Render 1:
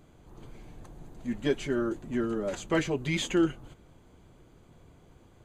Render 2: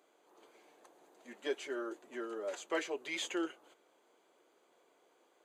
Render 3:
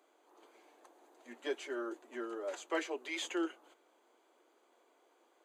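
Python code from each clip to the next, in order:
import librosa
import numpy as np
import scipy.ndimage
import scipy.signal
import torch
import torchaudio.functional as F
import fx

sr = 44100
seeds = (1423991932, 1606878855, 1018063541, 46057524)

y1 = scipy.signal.sosfilt(scipy.signal.butter(4, 390.0, 'highpass', fs=sr, output='sos'), x)
y1 = y1 * 10.0 ** (-6.0 / 20.0)
y2 = scipy.signal.sosfilt(scipy.signal.cheby1(6, 3, 230.0, 'highpass', fs=sr, output='sos'), y1)
y2 = y2 * 10.0 ** (1.5 / 20.0)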